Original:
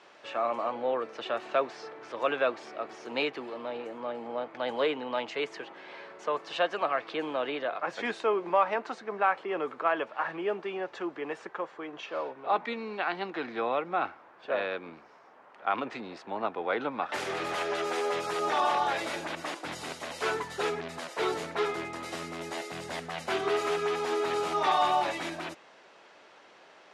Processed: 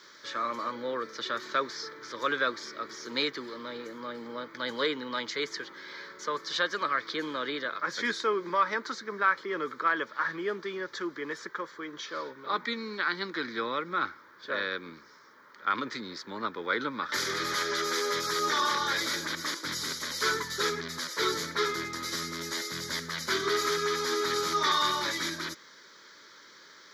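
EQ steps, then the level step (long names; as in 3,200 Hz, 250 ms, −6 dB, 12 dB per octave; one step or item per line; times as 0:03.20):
high-shelf EQ 2,700 Hz +8.5 dB
high-shelf EQ 6,800 Hz +11.5 dB
phaser with its sweep stopped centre 2,700 Hz, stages 6
+2.5 dB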